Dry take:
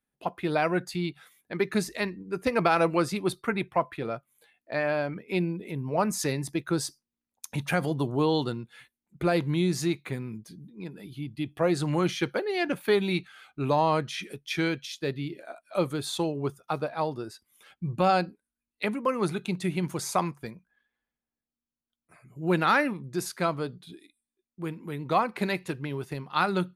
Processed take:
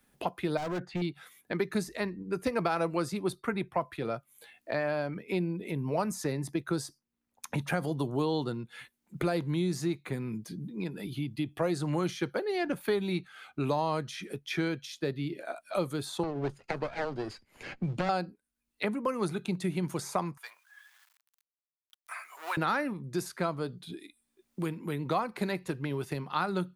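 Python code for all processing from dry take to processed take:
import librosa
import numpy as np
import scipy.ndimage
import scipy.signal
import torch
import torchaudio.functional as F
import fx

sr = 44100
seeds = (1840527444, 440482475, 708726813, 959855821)

y = fx.chain(x, sr, fx.lowpass(hz=2100.0, slope=12),
    fx.clip_hard(threshold_db=-29.0), at=(0.57, 1.02))
y = fx.chain(y, sr, fx.lower_of_two(delay_ms=0.43),
    fx.air_absorb(metres=87.0),
    fx.band_squash(depth_pct=40), at=(16.23, 18.09))
y = fx.chain(y, sr, fx.law_mismatch(coded='mu'),
    fx.highpass(hz=960.0, slope=24), at=(20.37, 22.57))
y = fx.dynamic_eq(y, sr, hz=2600.0, q=1.3, threshold_db=-44.0, ratio=4.0, max_db=-5)
y = fx.band_squash(y, sr, depth_pct=70)
y = F.gain(torch.from_numpy(y), -3.5).numpy()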